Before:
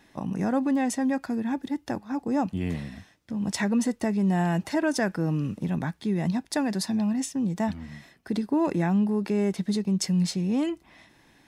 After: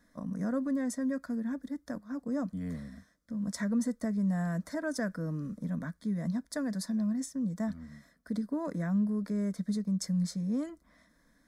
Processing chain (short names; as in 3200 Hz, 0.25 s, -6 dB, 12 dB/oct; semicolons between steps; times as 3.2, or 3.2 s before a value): low shelf 100 Hz +9 dB; fixed phaser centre 550 Hz, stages 8; gain -6.5 dB